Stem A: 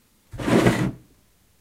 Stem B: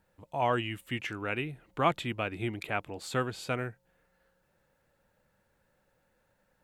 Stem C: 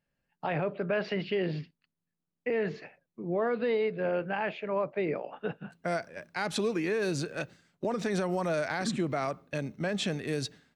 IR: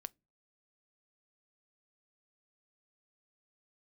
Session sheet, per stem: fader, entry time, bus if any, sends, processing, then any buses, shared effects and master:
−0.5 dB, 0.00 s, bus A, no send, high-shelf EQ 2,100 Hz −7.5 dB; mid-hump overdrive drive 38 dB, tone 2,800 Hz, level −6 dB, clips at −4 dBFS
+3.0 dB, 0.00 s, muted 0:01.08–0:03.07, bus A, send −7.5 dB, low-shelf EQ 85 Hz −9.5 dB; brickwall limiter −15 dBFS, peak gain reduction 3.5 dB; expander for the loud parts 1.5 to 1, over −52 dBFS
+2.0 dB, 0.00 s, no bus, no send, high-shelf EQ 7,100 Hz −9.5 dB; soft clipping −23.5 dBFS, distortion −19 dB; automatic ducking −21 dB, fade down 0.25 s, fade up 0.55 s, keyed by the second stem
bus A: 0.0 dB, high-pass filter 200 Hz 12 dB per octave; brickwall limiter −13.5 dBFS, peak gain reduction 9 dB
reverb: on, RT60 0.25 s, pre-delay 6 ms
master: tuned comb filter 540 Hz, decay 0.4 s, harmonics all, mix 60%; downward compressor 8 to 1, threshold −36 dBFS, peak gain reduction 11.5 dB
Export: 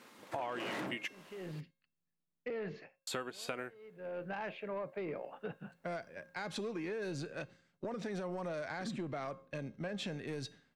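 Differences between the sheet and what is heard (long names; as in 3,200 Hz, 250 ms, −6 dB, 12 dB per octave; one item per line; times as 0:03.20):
stem A −0.5 dB → −11.0 dB
stem B +3.0 dB → +15.0 dB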